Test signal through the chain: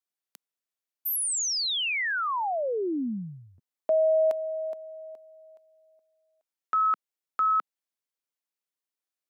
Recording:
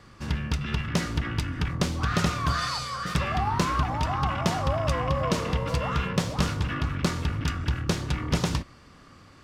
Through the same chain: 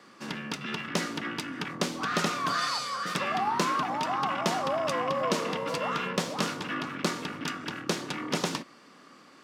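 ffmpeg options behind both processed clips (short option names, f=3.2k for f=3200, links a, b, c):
-af "highpass=f=210:w=0.5412,highpass=f=210:w=1.3066"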